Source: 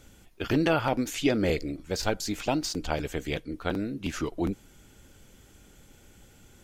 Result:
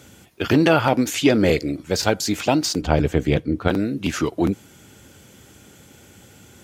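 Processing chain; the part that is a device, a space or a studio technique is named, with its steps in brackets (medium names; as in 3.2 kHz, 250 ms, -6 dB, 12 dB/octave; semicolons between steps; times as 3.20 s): parallel distortion (in parallel at -12 dB: hard clipper -23 dBFS, distortion -11 dB); on the sum: high-pass 79 Hz 24 dB/octave; 2.81–3.68 s: tilt EQ -2.5 dB/octave; trim +7 dB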